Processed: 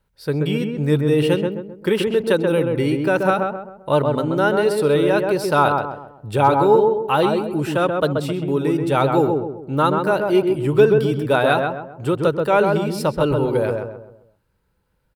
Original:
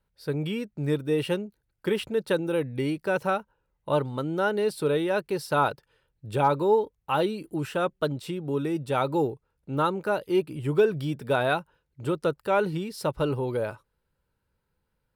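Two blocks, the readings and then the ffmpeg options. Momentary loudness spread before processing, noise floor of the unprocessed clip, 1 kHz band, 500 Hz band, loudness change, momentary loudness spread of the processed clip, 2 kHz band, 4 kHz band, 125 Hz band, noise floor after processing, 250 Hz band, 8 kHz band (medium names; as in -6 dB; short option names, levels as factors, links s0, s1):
7 LU, -78 dBFS, +8.5 dB, +9.0 dB, +8.5 dB, 9 LU, +8.0 dB, +7.5 dB, +9.0 dB, -66 dBFS, +9.0 dB, +7.0 dB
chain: -filter_complex "[0:a]asplit=2[s0][s1];[s1]adelay=131,lowpass=f=1400:p=1,volume=0.708,asplit=2[s2][s3];[s3]adelay=131,lowpass=f=1400:p=1,volume=0.42,asplit=2[s4][s5];[s5]adelay=131,lowpass=f=1400:p=1,volume=0.42,asplit=2[s6][s7];[s7]adelay=131,lowpass=f=1400:p=1,volume=0.42,asplit=2[s8][s9];[s9]adelay=131,lowpass=f=1400:p=1,volume=0.42[s10];[s0][s2][s4][s6][s8][s10]amix=inputs=6:normalize=0,volume=2.24"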